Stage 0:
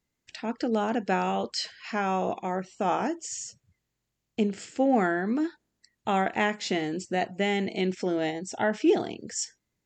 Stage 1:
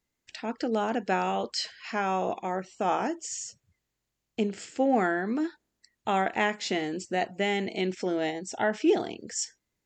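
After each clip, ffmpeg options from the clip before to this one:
ffmpeg -i in.wav -af "equalizer=frequency=140:width=0.82:gain=-4.5" out.wav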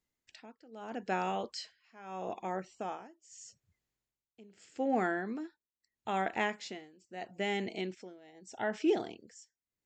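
ffmpeg -i in.wav -af "tremolo=f=0.79:d=0.93,volume=-5.5dB" out.wav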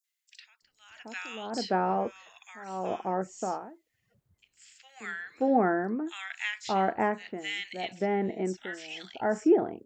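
ffmpeg -i in.wav -filter_complex "[0:a]acrossover=split=1700|5600[link_01][link_02][link_03];[link_02]adelay=40[link_04];[link_01]adelay=620[link_05];[link_05][link_04][link_03]amix=inputs=3:normalize=0,volume=7dB" out.wav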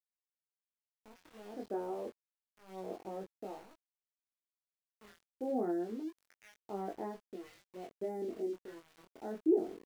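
ffmpeg -i in.wav -af "bandpass=frequency=360:width_type=q:width=1.7:csg=0,aeval=exprs='val(0)*gte(abs(val(0)),0.00473)':channel_layout=same,flanger=delay=20:depth=4:speed=0.29,volume=-3dB" out.wav

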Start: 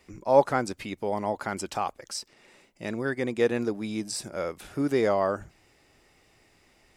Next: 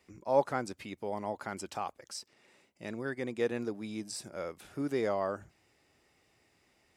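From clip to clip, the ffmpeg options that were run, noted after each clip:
ffmpeg -i in.wav -af "highpass=63,volume=-7.5dB" out.wav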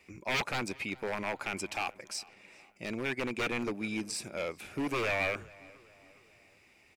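ffmpeg -i in.wav -filter_complex "[0:a]aeval=exprs='0.0282*(abs(mod(val(0)/0.0282+3,4)-2)-1)':channel_layout=same,equalizer=frequency=2400:width=4.3:gain=12.5,asplit=2[link_01][link_02];[link_02]adelay=411,lowpass=frequency=3100:poles=1,volume=-22dB,asplit=2[link_03][link_04];[link_04]adelay=411,lowpass=frequency=3100:poles=1,volume=0.5,asplit=2[link_05][link_06];[link_06]adelay=411,lowpass=frequency=3100:poles=1,volume=0.5[link_07];[link_01][link_03][link_05][link_07]amix=inputs=4:normalize=0,volume=3.5dB" out.wav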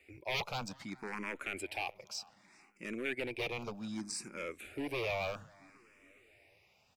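ffmpeg -i in.wav -filter_complex "[0:a]asplit=2[link_01][link_02];[link_02]afreqshift=0.64[link_03];[link_01][link_03]amix=inputs=2:normalize=1,volume=-2dB" out.wav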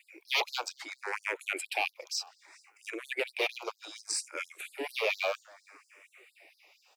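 ffmpeg -i in.wav -af "afftfilt=real='re*gte(b*sr/1024,290*pow(4100/290,0.5+0.5*sin(2*PI*4.3*pts/sr)))':imag='im*gte(b*sr/1024,290*pow(4100/290,0.5+0.5*sin(2*PI*4.3*pts/sr)))':win_size=1024:overlap=0.75,volume=8dB" out.wav

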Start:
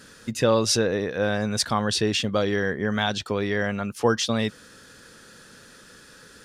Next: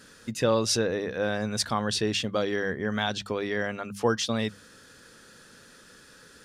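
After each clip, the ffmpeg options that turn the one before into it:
ffmpeg -i in.wav -af "bandreject=frequency=50:width_type=h:width=6,bandreject=frequency=100:width_type=h:width=6,bandreject=frequency=150:width_type=h:width=6,bandreject=frequency=200:width_type=h:width=6,volume=-3.5dB" out.wav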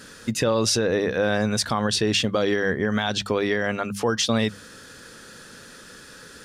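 ffmpeg -i in.wav -af "alimiter=limit=-20dB:level=0:latency=1:release=101,volume=8dB" out.wav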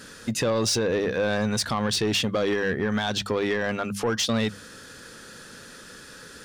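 ffmpeg -i in.wav -af "asoftclip=type=tanh:threshold=-17.5dB" out.wav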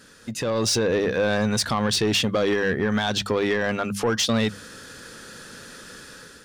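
ffmpeg -i in.wav -af "dynaudnorm=framelen=200:gausssize=5:maxgain=9dB,volume=-6.5dB" out.wav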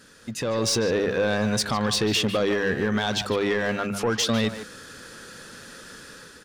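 ffmpeg -i in.wav -filter_complex "[0:a]asplit=2[link_01][link_02];[link_02]adelay=150,highpass=300,lowpass=3400,asoftclip=type=hard:threshold=-25dB,volume=-6dB[link_03];[link_01][link_03]amix=inputs=2:normalize=0,volume=-1.5dB" out.wav

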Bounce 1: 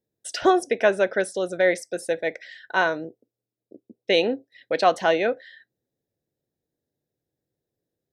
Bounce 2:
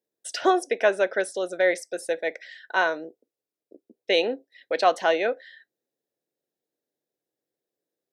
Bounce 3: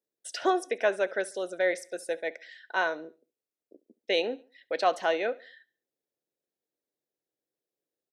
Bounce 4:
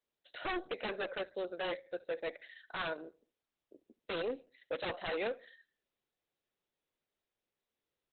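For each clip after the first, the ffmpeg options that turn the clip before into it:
ffmpeg -i in.wav -af "highpass=330,volume=-1dB" out.wav
ffmpeg -i in.wav -af "aecho=1:1:70|140|210:0.0841|0.032|0.0121,volume=-5dB" out.wav
ffmpeg -i in.wav -af "aeval=exprs='0.0501*(abs(mod(val(0)/0.0501+3,4)-2)-1)':channel_layout=same,volume=-3.5dB" -ar 48000 -c:a libopus -b:a 8k out.opus

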